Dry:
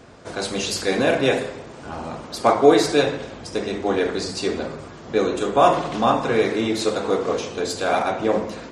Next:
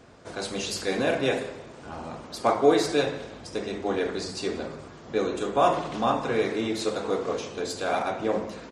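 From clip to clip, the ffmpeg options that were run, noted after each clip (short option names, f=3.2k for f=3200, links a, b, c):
-af "aecho=1:1:182|364|546:0.075|0.0322|0.0139,volume=-6dB"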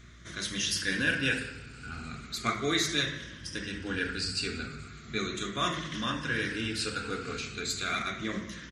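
-af "afftfilt=real='re*pow(10,9/40*sin(2*PI*(1.2*log(max(b,1)*sr/1024/100)/log(2)-(-0.37)*(pts-256)/sr)))':imag='im*pow(10,9/40*sin(2*PI*(1.2*log(max(b,1)*sr/1024/100)/log(2)-(-0.37)*(pts-256)/sr)))':win_size=1024:overlap=0.75,aeval=exprs='val(0)+0.002*(sin(2*PI*60*n/s)+sin(2*PI*2*60*n/s)/2+sin(2*PI*3*60*n/s)/3+sin(2*PI*4*60*n/s)/4+sin(2*PI*5*60*n/s)/5)':c=same,firequalizer=gain_entry='entry(110,0);entry(530,-19);entry(830,-23);entry(1400,1);entry(11000,-2)':delay=0.05:min_phase=1,volume=1.5dB"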